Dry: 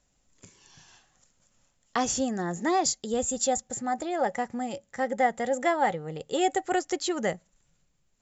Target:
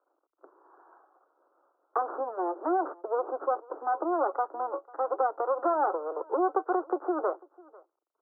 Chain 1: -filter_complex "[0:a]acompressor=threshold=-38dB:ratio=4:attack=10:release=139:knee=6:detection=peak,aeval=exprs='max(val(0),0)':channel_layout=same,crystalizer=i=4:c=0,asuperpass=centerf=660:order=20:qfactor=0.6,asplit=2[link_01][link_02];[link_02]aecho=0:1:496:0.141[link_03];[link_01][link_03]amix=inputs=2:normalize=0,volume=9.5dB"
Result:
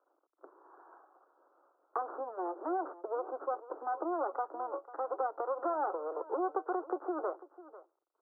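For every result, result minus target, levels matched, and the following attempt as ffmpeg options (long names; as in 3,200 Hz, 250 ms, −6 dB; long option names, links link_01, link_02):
downward compressor: peak gain reduction +7 dB; echo-to-direct +7 dB
-filter_complex "[0:a]acompressor=threshold=-28.5dB:ratio=4:attack=10:release=139:knee=6:detection=peak,aeval=exprs='max(val(0),0)':channel_layout=same,crystalizer=i=4:c=0,asuperpass=centerf=660:order=20:qfactor=0.6,asplit=2[link_01][link_02];[link_02]aecho=0:1:496:0.141[link_03];[link_01][link_03]amix=inputs=2:normalize=0,volume=9.5dB"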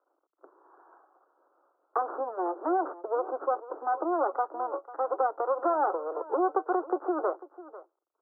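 echo-to-direct +7 dB
-filter_complex "[0:a]acompressor=threshold=-28.5dB:ratio=4:attack=10:release=139:knee=6:detection=peak,aeval=exprs='max(val(0),0)':channel_layout=same,crystalizer=i=4:c=0,asuperpass=centerf=660:order=20:qfactor=0.6,asplit=2[link_01][link_02];[link_02]aecho=0:1:496:0.0631[link_03];[link_01][link_03]amix=inputs=2:normalize=0,volume=9.5dB"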